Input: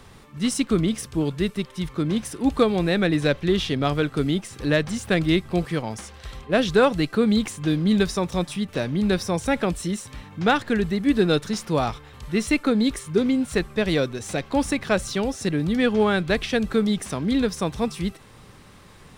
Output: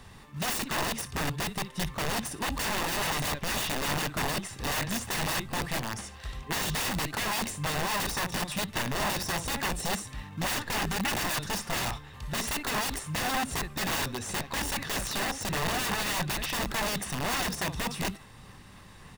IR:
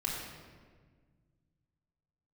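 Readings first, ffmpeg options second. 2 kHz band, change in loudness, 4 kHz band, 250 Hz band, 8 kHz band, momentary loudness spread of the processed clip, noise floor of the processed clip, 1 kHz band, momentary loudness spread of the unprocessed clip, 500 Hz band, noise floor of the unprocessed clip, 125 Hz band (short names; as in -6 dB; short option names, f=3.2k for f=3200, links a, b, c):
-2.5 dB, -7.0 dB, -1.0 dB, -15.0 dB, +3.0 dB, 5 LU, -49 dBFS, -2.5 dB, 7 LU, -14.0 dB, -48 dBFS, -8.5 dB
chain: -filter_complex "[0:a]highshelf=f=2.9k:g=3.5,asplit=2[a][b];[b]aecho=0:1:21|62:0.158|0.141[c];[a][c]amix=inputs=2:normalize=0,aeval=exprs='(mod(11.9*val(0)+1,2)-1)/11.9':c=same,aecho=1:1:1.1:0.32,asplit=2[d][e];[e]acrusher=samples=22:mix=1:aa=0.000001:lfo=1:lforange=35.2:lforate=3.5,volume=-9.5dB[f];[d][f]amix=inputs=2:normalize=0,equalizer=f=1.7k:t=o:w=1.8:g=2.5,volume=-6dB"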